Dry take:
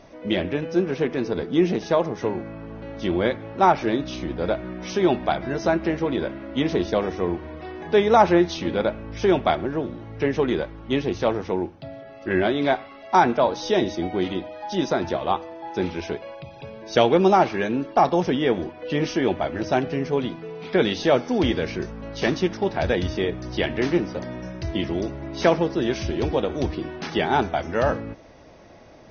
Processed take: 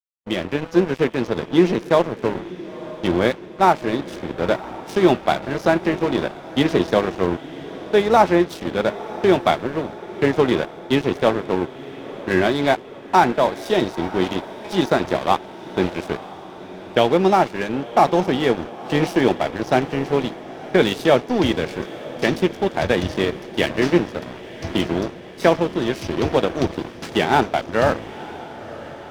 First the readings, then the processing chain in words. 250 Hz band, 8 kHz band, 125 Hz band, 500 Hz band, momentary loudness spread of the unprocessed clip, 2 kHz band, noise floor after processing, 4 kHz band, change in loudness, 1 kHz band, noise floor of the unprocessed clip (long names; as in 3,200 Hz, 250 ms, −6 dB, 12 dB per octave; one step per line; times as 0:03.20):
+3.0 dB, can't be measured, +2.5 dB, +3.0 dB, 12 LU, +4.0 dB, −38 dBFS, +3.5 dB, +3.0 dB, +3.0 dB, −43 dBFS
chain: high-pass filter 80 Hz 24 dB per octave
dead-zone distortion −31 dBFS
automatic gain control gain up to 8 dB
noise gate −38 dBFS, range −44 dB
feedback delay with all-pass diffusion 975 ms, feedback 59%, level −16 dB